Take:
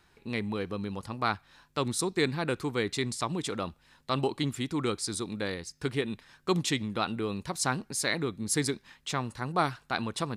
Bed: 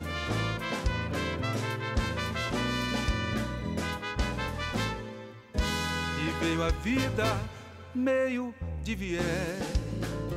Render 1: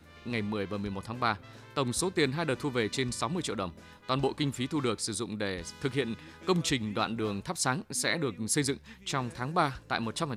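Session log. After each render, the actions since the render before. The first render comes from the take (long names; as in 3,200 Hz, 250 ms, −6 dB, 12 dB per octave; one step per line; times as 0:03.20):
mix in bed −19.5 dB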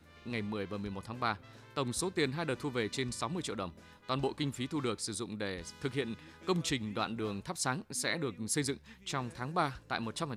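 level −4.5 dB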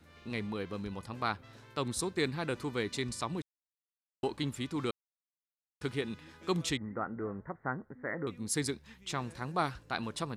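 0:03.42–0:04.23: silence
0:04.91–0:05.81: silence
0:06.77–0:08.27: Chebyshev low-pass with heavy ripple 2,000 Hz, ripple 3 dB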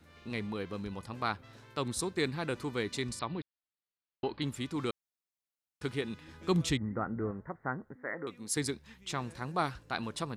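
0:03.19–0:04.42: elliptic low-pass filter 4,600 Hz
0:06.28–0:07.31: low-shelf EQ 200 Hz +9.5 dB
0:07.96–0:08.57: high-pass filter 360 Hz 6 dB per octave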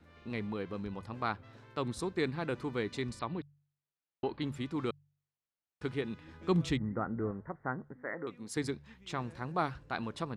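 low-pass filter 2,300 Hz 6 dB per octave
hum removal 48.08 Hz, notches 3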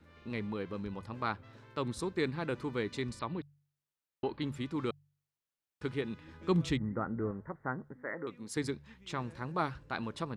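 notch filter 720 Hz, Q 12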